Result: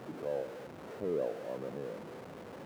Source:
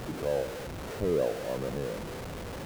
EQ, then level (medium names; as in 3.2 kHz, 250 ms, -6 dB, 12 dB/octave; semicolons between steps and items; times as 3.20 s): high-pass 180 Hz 12 dB/octave; treble shelf 2.5 kHz -11 dB; -5.5 dB